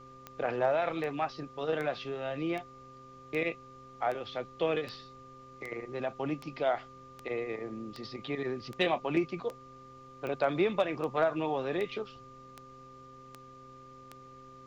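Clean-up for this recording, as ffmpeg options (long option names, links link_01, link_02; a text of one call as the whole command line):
ffmpeg -i in.wav -af "adeclick=threshold=4,bandreject=frequency=130.6:width_type=h:width=4,bandreject=frequency=261.2:width_type=h:width=4,bandreject=frequency=391.8:width_type=h:width=4,bandreject=frequency=522.4:width_type=h:width=4,bandreject=frequency=1200:width=30,agate=range=-21dB:threshold=-44dB" out.wav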